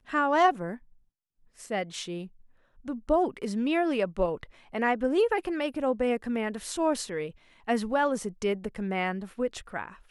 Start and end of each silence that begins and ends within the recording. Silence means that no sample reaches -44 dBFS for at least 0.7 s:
0.77–1.59 s

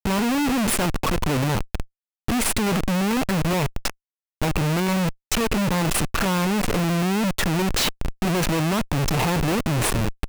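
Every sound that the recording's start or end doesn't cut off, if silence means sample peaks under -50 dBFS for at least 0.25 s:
2.28–3.93 s

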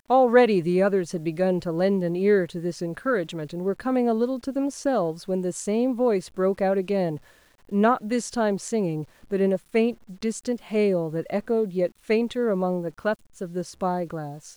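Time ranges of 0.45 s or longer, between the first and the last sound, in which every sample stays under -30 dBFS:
7.16–7.72 s

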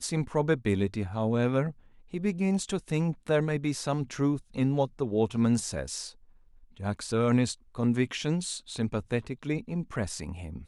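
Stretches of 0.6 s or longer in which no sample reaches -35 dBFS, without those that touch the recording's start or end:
6.08–6.80 s

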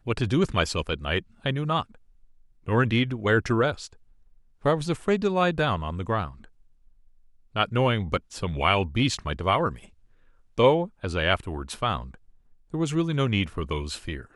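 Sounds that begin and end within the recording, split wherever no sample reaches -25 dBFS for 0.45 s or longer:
2.68–3.71 s
4.66–6.25 s
7.56–9.69 s
10.59–11.97 s

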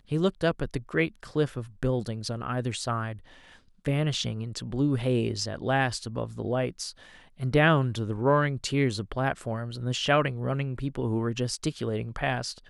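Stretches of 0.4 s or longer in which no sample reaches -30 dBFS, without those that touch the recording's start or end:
3.12–3.86 s
6.89–7.42 s

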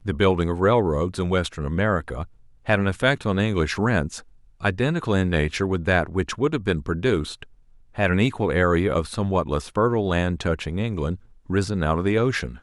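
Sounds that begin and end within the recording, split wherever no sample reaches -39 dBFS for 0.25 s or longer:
2.66–4.21 s
4.61–7.43 s
7.95–11.16 s

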